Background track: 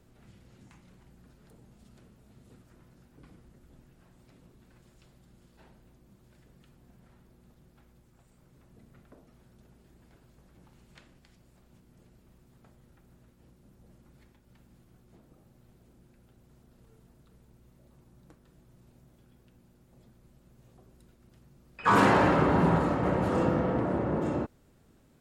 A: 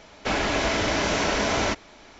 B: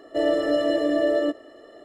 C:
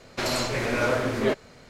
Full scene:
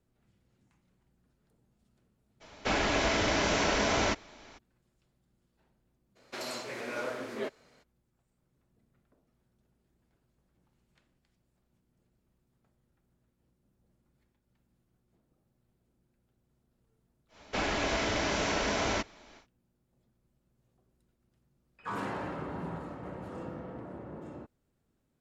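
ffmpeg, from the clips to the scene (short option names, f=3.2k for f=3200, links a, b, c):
-filter_complex "[1:a]asplit=2[a][b];[0:a]volume=-15dB[c];[3:a]highpass=230[d];[a]atrim=end=2.19,asetpts=PTS-STARTPTS,volume=-4dB,afade=t=in:d=0.02,afade=t=out:st=2.17:d=0.02,adelay=2400[e];[d]atrim=end=1.69,asetpts=PTS-STARTPTS,volume=-11.5dB,afade=t=in:d=0.02,afade=t=out:st=1.67:d=0.02,adelay=6150[f];[b]atrim=end=2.19,asetpts=PTS-STARTPTS,volume=-6.5dB,afade=t=in:d=0.1,afade=t=out:st=2.09:d=0.1,adelay=17280[g];[c][e][f][g]amix=inputs=4:normalize=0"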